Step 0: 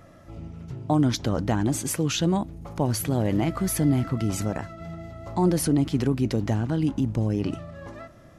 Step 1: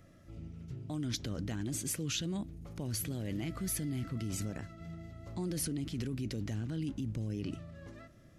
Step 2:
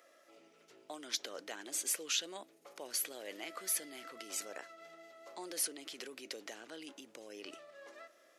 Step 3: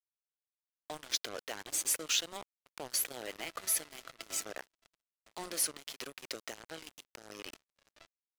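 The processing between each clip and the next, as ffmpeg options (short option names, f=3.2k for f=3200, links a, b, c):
-filter_complex "[0:a]equalizer=f=880:t=o:w=1.2:g=-12,acrossover=split=1600[a][b];[a]alimiter=limit=-23dB:level=0:latency=1:release=18[c];[c][b]amix=inputs=2:normalize=0,volume=-7dB"
-af "highpass=f=470:w=0.5412,highpass=f=470:w=1.3066,volume=2.5dB"
-af "acrusher=bits=6:mix=0:aa=0.5,volume=3.5dB"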